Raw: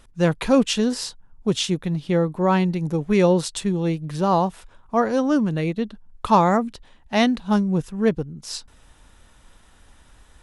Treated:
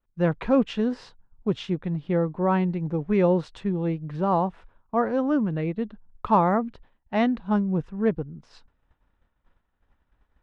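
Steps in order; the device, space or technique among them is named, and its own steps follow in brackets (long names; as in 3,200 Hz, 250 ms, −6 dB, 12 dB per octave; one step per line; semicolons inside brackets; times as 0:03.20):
hearing-loss simulation (low-pass filter 2,000 Hz 12 dB per octave; downward expander −40 dBFS)
level −3.5 dB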